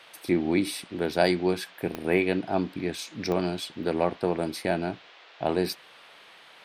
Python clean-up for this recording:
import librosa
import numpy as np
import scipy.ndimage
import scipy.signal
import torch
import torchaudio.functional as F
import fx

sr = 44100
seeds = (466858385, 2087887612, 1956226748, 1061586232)

y = fx.fix_declick_ar(x, sr, threshold=10.0)
y = fx.noise_reduce(y, sr, print_start_s=6.12, print_end_s=6.62, reduce_db=20.0)